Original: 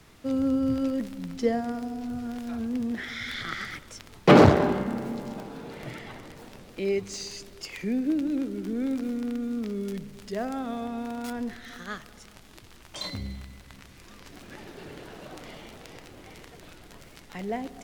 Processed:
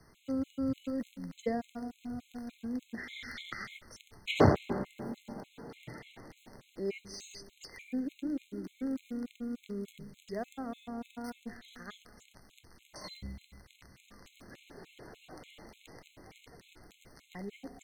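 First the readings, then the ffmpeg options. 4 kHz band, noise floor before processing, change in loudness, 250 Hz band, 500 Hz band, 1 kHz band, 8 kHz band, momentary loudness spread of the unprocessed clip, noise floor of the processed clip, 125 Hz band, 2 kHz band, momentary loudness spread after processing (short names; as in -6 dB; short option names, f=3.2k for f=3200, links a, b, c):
-8.5 dB, -51 dBFS, -9.5 dB, -10.0 dB, -10.0 dB, -10.5 dB, -9.5 dB, 19 LU, -67 dBFS, -8.0 dB, -9.5 dB, 19 LU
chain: -af "afftfilt=real='re*gt(sin(2*PI*3.4*pts/sr)*(1-2*mod(floor(b*sr/1024/2100),2)),0)':imag='im*gt(sin(2*PI*3.4*pts/sr)*(1-2*mod(floor(b*sr/1024/2100),2)),0)':win_size=1024:overlap=0.75,volume=-6dB"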